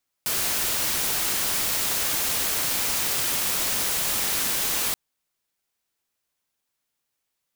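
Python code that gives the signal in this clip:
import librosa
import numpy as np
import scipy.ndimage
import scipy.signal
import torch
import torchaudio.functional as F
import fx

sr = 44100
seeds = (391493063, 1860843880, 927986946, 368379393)

y = fx.noise_colour(sr, seeds[0], length_s=4.68, colour='white', level_db=-25.0)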